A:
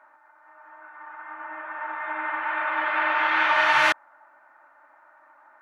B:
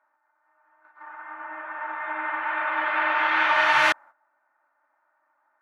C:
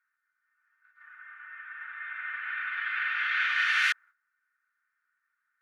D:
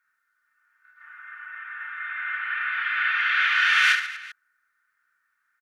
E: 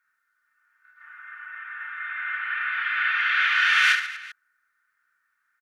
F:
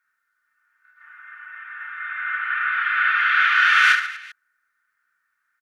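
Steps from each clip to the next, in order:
noise gate −43 dBFS, range −15 dB
Butterworth high-pass 1,400 Hz 48 dB per octave; level −3.5 dB
reverse bouncing-ball delay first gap 30 ms, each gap 1.5×, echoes 5; level +5 dB
no processing that can be heard
dynamic equaliser 1,300 Hz, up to +8 dB, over −37 dBFS, Q 2.1

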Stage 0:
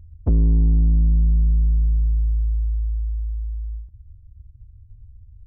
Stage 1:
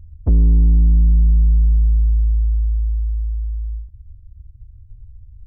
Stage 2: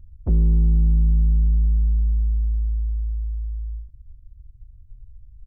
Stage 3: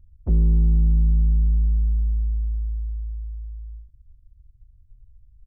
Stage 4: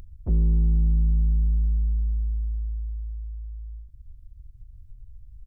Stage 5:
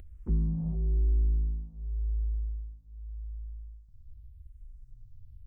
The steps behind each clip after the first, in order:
low-shelf EQ 65 Hz +7 dB
comb filter 5.4 ms, depth 45%; level −4.5 dB
expander for the loud parts 1.5 to 1, over −28 dBFS
upward compression, threshold −29 dBFS; level −3 dB
reverb whose tail is shaped and stops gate 480 ms rising, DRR 4.5 dB; frequency shifter mixed with the dry sound −0.9 Hz; level −2 dB

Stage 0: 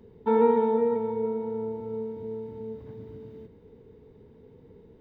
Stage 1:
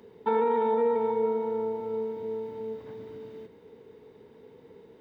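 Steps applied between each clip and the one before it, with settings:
high-pass filter 710 Hz 6 dB per octave
brickwall limiter −25.5 dBFS, peak gain reduction 11 dB
level +8 dB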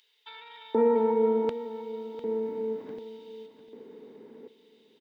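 auto-filter high-pass square 0.67 Hz 240–3,300 Hz
repeating echo 700 ms, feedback 36%, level −13.5 dB

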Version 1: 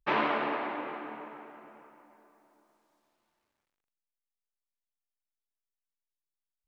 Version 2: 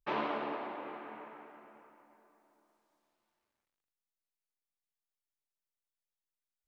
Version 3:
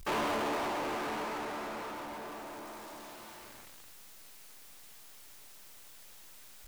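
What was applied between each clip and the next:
mains-hum notches 50/100/150/200/250/300 Hz; dynamic equaliser 1,900 Hz, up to −6 dB, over −44 dBFS, Q 0.98; level −4.5 dB
power curve on the samples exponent 0.35; level −4.5 dB

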